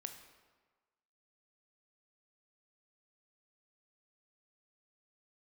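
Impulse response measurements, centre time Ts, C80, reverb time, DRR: 22 ms, 10.0 dB, 1.4 s, 6.0 dB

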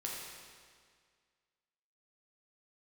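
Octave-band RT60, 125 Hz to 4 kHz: 1.9, 1.9, 1.9, 1.9, 1.9, 1.7 s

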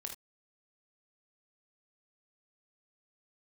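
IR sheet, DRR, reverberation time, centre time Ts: 2.5 dB, not exponential, 18 ms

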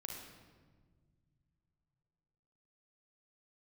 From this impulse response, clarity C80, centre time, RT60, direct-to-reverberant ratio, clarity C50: 4.5 dB, 62 ms, 1.6 s, -0.5 dB, 1.5 dB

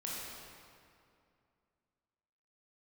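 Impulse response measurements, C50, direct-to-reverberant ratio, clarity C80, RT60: -2.5 dB, -5.5 dB, -1.0 dB, 2.4 s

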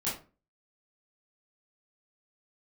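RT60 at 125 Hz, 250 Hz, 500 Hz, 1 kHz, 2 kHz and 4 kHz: 0.45, 0.45, 0.35, 0.30, 0.30, 0.20 s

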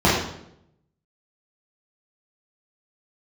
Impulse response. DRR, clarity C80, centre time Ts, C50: -7.5 dB, 4.5 dB, 56 ms, 1.5 dB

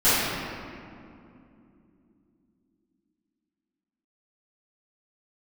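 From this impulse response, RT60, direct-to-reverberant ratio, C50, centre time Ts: 2.7 s, -17.0 dB, -4.5 dB, 0.156 s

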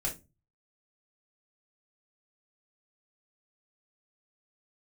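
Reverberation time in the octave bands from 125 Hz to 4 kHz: 0.55, 0.40, 0.30, 0.20, 0.20, 0.20 s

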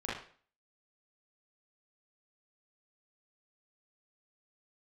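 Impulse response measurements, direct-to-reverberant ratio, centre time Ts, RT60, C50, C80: -8.0 dB, 53 ms, 0.45 s, 1.0 dB, 8.0 dB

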